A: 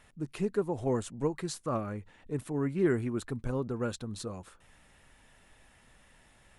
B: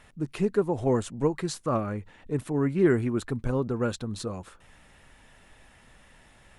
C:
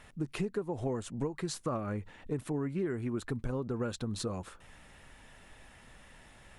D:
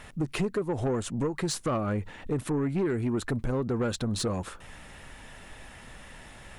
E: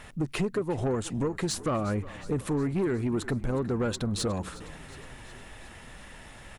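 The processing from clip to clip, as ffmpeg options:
-af "highshelf=f=7.9k:g=-5.5,volume=5.5dB"
-af "acompressor=threshold=-30dB:ratio=12"
-af "asoftclip=type=tanh:threshold=-30dB,volume=8.5dB"
-filter_complex "[0:a]asplit=7[a][b][c][d][e][f][g];[b]adelay=363,afreqshift=-31,volume=-18dB[h];[c]adelay=726,afreqshift=-62,volume=-21.7dB[i];[d]adelay=1089,afreqshift=-93,volume=-25.5dB[j];[e]adelay=1452,afreqshift=-124,volume=-29.2dB[k];[f]adelay=1815,afreqshift=-155,volume=-33dB[l];[g]adelay=2178,afreqshift=-186,volume=-36.7dB[m];[a][h][i][j][k][l][m]amix=inputs=7:normalize=0"

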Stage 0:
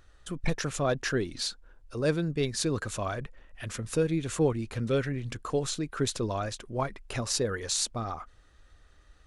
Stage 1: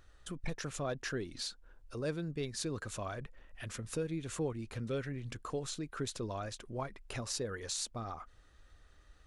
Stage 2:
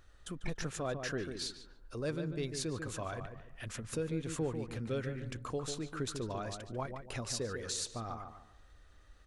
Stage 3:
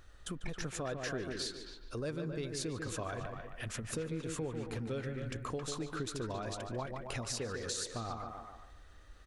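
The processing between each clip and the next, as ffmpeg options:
-af "acompressor=threshold=-42dB:ratio=1.5,volume=-3dB"
-filter_complex "[0:a]asplit=2[a][b];[b]adelay=145,lowpass=f=1.8k:p=1,volume=-6.5dB,asplit=2[c][d];[d]adelay=145,lowpass=f=1.8k:p=1,volume=0.33,asplit=2[e][f];[f]adelay=145,lowpass=f=1.8k:p=1,volume=0.33,asplit=2[g][h];[h]adelay=145,lowpass=f=1.8k:p=1,volume=0.33[i];[a][c][e][g][i]amix=inputs=5:normalize=0"
-filter_complex "[0:a]acompressor=threshold=-40dB:ratio=3,asplit=2[a][b];[b]adelay=270,highpass=300,lowpass=3.4k,asoftclip=type=hard:threshold=-34dB,volume=-7dB[c];[a][c]amix=inputs=2:normalize=0,volume=3.5dB"

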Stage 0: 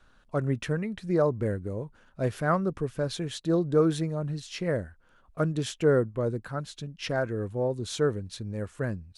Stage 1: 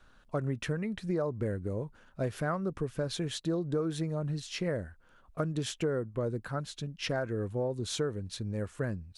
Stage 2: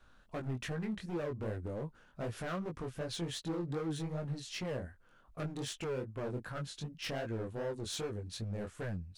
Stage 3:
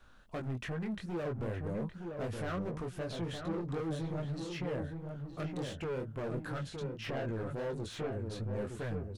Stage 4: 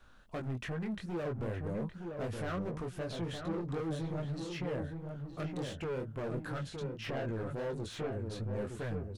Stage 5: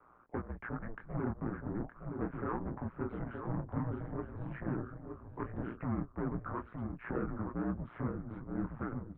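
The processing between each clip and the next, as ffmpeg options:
-af "acompressor=threshold=-28dB:ratio=6"
-af "asoftclip=type=hard:threshold=-31.5dB,flanger=delay=17.5:depth=6.4:speed=2.6"
-filter_complex "[0:a]acrossover=split=2700[a][b];[b]acompressor=threshold=-55dB:ratio=6[c];[a][c]amix=inputs=2:normalize=0,asoftclip=type=tanh:threshold=-33.5dB,asplit=2[d][e];[e]adelay=917,lowpass=f=1.2k:p=1,volume=-4.5dB,asplit=2[f][g];[g]adelay=917,lowpass=f=1.2k:p=1,volume=0.26,asplit=2[h][i];[i]adelay=917,lowpass=f=1.2k:p=1,volume=0.26,asplit=2[j][k];[k]adelay=917,lowpass=f=1.2k:p=1,volume=0.26[l];[d][f][h][j][l]amix=inputs=5:normalize=0,volume=2.5dB"
-af anull
-af "aeval=exprs='val(0)*sin(2*PI*59*n/s)':c=same,highpass=f=320:t=q:w=0.5412,highpass=f=320:t=q:w=1.307,lowpass=f=2k:t=q:w=0.5176,lowpass=f=2k:t=q:w=0.7071,lowpass=f=2k:t=q:w=1.932,afreqshift=-260,volume=6dB"

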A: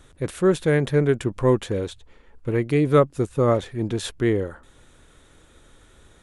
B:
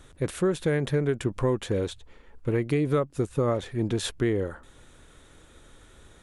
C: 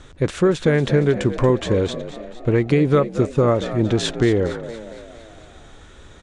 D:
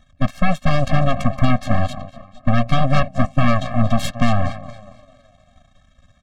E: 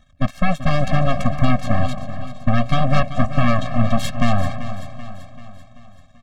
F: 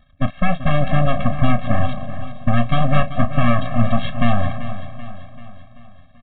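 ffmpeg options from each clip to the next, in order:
-af "acompressor=threshold=-21dB:ratio=6"
-filter_complex "[0:a]lowpass=f=7.3k:w=0.5412,lowpass=f=7.3k:w=1.3066,asplit=2[a][b];[b]asplit=6[c][d][e][f][g][h];[c]adelay=231,afreqshift=56,volume=-13dB[i];[d]adelay=462,afreqshift=112,volume=-18.2dB[j];[e]adelay=693,afreqshift=168,volume=-23.4dB[k];[f]adelay=924,afreqshift=224,volume=-28.6dB[l];[g]adelay=1155,afreqshift=280,volume=-33.8dB[m];[h]adelay=1386,afreqshift=336,volume=-39dB[n];[i][j][k][l][m][n]amix=inputs=6:normalize=0[o];[a][o]amix=inputs=2:normalize=0,volume=8dB"
-af "aeval=exprs='0.562*(cos(1*acos(clip(val(0)/0.562,-1,1)))-cos(1*PI/2))+0.141*(cos(3*acos(clip(val(0)/0.562,-1,1)))-cos(3*PI/2))+0.1*(cos(4*acos(clip(val(0)/0.562,-1,1)))-cos(4*PI/2))+0.0891*(cos(8*acos(clip(val(0)/0.562,-1,1)))-cos(8*PI/2))':c=same,highshelf=f=5.2k:g=-6.5,afftfilt=real='re*eq(mod(floor(b*sr/1024/260),2),0)':imag='im*eq(mod(floor(b*sr/1024/260),2),0)':win_size=1024:overlap=0.75,volume=3.5dB"
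-af "aecho=1:1:386|772|1158|1544|1930:0.237|0.126|0.0666|0.0353|0.0187,volume=-1dB"
-filter_complex "[0:a]asplit=2[a][b];[b]adelay=34,volume=-12.5dB[c];[a][c]amix=inputs=2:normalize=0,aresample=8000,aresample=44100"

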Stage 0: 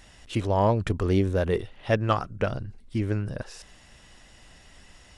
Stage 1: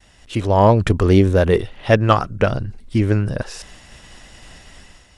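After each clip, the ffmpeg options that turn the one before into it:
-af "agate=range=-33dB:threshold=-50dB:ratio=3:detection=peak,dynaudnorm=f=130:g=7:m=8.5dB,volume=2dB"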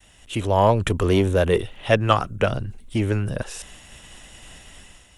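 -filter_complex "[0:a]acrossover=split=350|910[a][b][c];[a]asoftclip=type=tanh:threshold=-15dB[d];[c]aexciter=amount=1.4:drive=3.9:freq=2.6k[e];[d][b][e]amix=inputs=3:normalize=0,volume=-3dB"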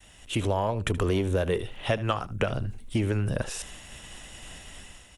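-af "acompressor=threshold=-22dB:ratio=12,aecho=1:1:76:0.133"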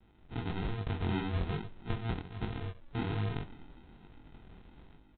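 -af "aresample=8000,acrusher=samples=14:mix=1:aa=0.000001,aresample=44100,flanger=delay=19:depth=5.9:speed=1.2,volume=-5dB"

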